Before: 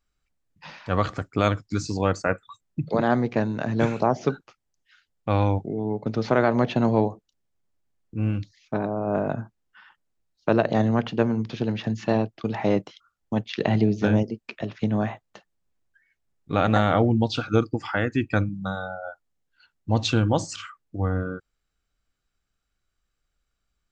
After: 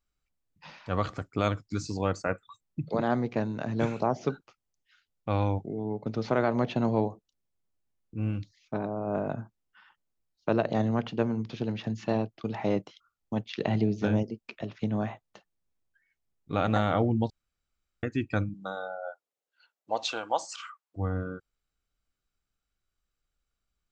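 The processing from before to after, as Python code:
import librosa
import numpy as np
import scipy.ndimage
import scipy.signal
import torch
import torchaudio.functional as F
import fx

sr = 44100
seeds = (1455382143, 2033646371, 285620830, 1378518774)

y = fx.highpass_res(x, sr, hz=fx.line((18.53, 330.0), (20.96, 1000.0)), q=1.9, at=(18.53, 20.96), fade=0.02)
y = fx.edit(y, sr, fx.room_tone_fill(start_s=17.3, length_s=0.73), tone=tone)
y = fx.peak_eq(y, sr, hz=1700.0, db=-3.0, octaves=0.31)
y = F.gain(torch.from_numpy(y), -5.5).numpy()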